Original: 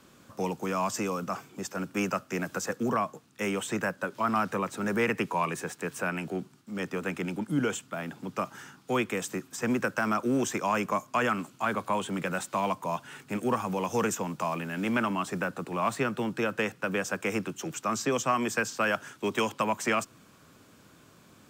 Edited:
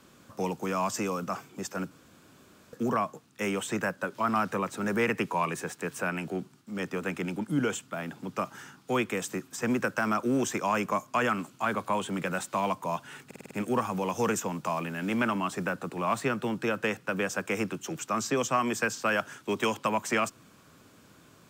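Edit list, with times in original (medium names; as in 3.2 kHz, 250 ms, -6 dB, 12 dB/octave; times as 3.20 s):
1.91–2.73 s: room tone
13.26 s: stutter 0.05 s, 6 plays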